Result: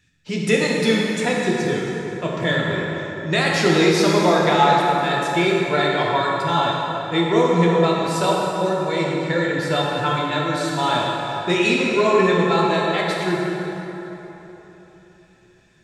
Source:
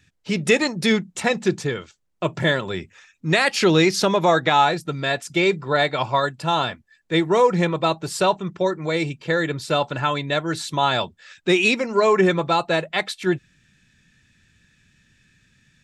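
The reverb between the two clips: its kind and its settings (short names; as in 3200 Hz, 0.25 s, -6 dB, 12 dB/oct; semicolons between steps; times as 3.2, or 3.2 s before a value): plate-style reverb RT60 3.7 s, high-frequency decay 0.6×, DRR -3.5 dB; gain -4 dB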